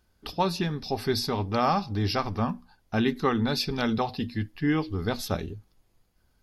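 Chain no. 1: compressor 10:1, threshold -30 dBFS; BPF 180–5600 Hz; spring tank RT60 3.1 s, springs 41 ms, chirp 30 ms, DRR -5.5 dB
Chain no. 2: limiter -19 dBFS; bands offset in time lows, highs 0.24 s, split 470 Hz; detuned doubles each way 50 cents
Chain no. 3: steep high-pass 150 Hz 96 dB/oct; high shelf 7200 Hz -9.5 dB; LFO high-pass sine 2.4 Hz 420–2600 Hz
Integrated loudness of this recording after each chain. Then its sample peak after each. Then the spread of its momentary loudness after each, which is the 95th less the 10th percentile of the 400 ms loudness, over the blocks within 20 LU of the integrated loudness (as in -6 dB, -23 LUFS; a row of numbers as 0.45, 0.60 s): -30.5, -34.5, -29.0 LUFS; -16.0, -18.0, -9.0 dBFS; 7, 7, 12 LU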